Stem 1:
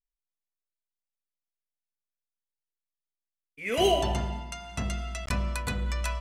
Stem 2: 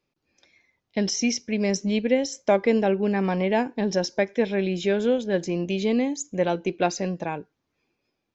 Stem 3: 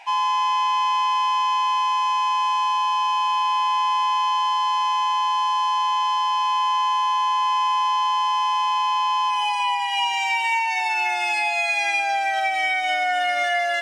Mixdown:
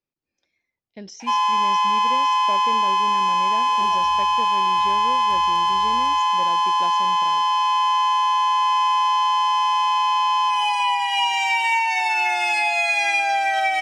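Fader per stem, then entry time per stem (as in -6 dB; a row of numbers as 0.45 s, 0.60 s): -19.0 dB, -13.5 dB, +2.0 dB; 0.00 s, 0.00 s, 1.20 s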